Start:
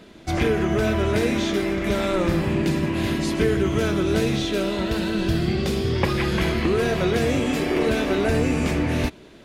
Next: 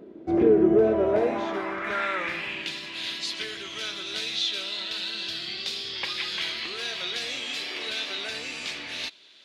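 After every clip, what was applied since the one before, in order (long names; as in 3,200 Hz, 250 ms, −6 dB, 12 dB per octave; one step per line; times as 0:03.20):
band-pass filter sweep 370 Hz → 3,900 Hz, 0:00.68–0:02.82
tape wow and flutter 27 cents
level +6.5 dB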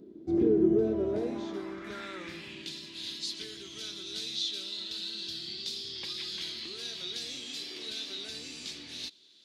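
flat-topped bell 1,200 Hz −12.5 dB 2.8 octaves
level −3 dB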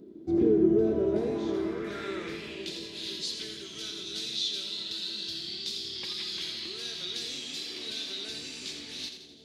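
echo with a time of its own for lows and highs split 700 Hz, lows 513 ms, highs 84 ms, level −8 dB
level +1.5 dB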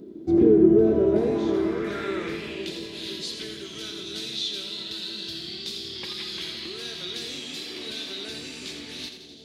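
dynamic equaliser 5,500 Hz, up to −7 dB, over −49 dBFS, Q 0.7
level +6.5 dB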